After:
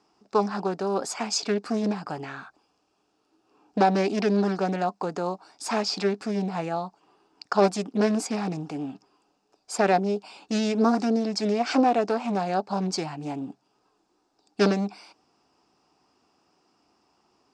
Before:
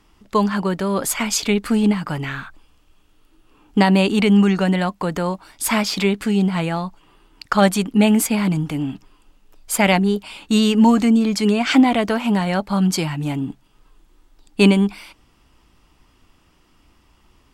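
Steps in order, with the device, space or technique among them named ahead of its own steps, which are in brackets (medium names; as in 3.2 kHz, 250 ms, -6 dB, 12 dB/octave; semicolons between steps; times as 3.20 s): full-range speaker at full volume (loudspeaker Doppler distortion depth 0.59 ms; cabinet simulation 210–7800 Hz, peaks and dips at 410 Hz +5 dB, 750 Hz +9 dB, 2 kHz -8 dB, 3.2 kHz -9 dB, 5.1 kHz +7 dB); trim -7.5 dB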